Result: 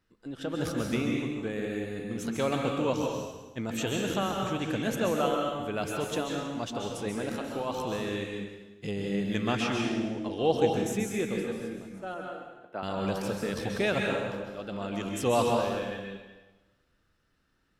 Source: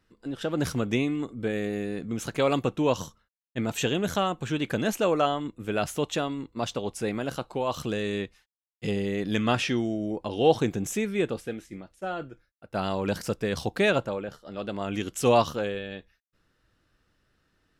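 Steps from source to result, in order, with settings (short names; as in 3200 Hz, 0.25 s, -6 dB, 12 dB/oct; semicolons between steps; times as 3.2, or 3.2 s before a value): 12.14–12.83 three-band isolator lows -15 dB, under 260 Hz, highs -16 dB, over 2500 Hz; plate-style reverb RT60 1.2 s, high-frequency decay 0.9×, pre-delay 0.12 s, DRR 0 dB; gain -5.5 dB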